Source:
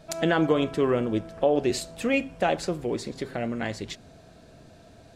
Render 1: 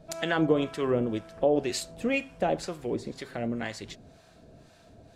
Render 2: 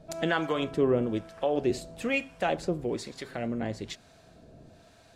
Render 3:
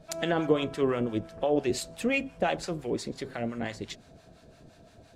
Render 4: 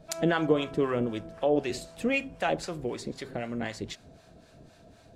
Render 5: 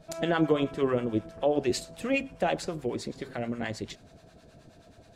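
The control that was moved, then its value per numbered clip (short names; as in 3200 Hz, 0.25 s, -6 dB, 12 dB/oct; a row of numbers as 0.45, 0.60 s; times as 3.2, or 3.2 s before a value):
harmonic tremolo, rate: 2, 1.1, 5.8, 3.9, 9.4 Hz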